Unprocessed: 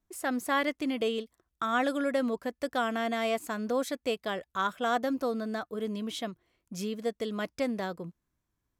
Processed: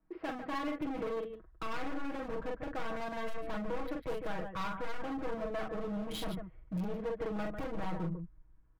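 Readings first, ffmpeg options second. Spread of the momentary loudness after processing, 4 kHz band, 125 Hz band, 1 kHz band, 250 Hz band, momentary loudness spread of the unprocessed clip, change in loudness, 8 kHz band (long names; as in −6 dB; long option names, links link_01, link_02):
4 LU, −10.0 dB, can't be measured, −8.0 dB, −6.5 dB, 9 LU, −7.5 dB, −13.0 dB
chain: -filter_complex "[0:a]acompressor=threshold=-32dB:ratio=8,aresample=11025,asoftclip=type=tanh:threshold=-33dB,aresample=44100,asubboost=boost=3:cutoff=76,acrossover=split=120|2100[link_01][link_02][link_03];[link_01]dynaudnorm=framelen=240:gausssize=5:maxgain=14dB[link_04];[link_03]acrusher=bits=5:mix=0:aa=0.5[link_05];[link_04][link_02][link_05]amix=inputs=3:normalize=0,aecho=1:1:43.73|148.7:0.631|0.282,asoftclip=type=hard:threshold=-39dB,aecho=1:1:6.3:0.83,volume=3dB"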